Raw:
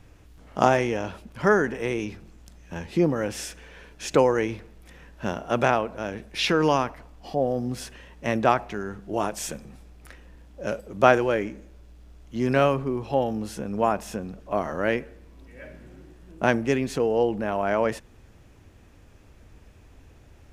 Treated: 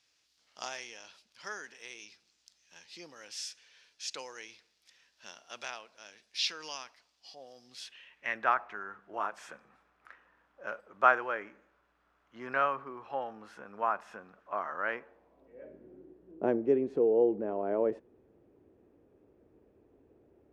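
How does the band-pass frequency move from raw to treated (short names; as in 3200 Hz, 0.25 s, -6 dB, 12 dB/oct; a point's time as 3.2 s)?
band-pass, Q 2.4
7.64 s 4800 Hz
8.58 s 1300 Hz
14.89 s 1300 Hz
15.71 s 390 Hz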